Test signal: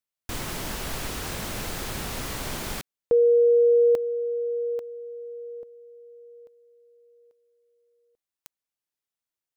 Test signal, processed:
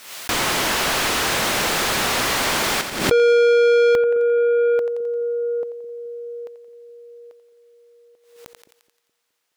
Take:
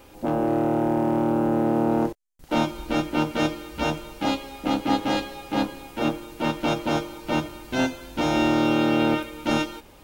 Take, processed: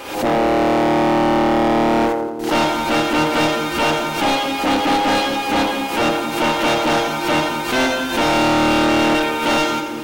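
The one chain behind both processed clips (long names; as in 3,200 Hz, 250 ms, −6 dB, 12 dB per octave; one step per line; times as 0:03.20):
echo with a time of its own for lows and highs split 420 Hz, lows 211 ms, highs 87 ms, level −12.5 dB
mid-hump overdrive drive 27 dB, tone 4,700 Hz, clips at −9.5 dBFS
background raised ahead of every attack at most 78 dB per second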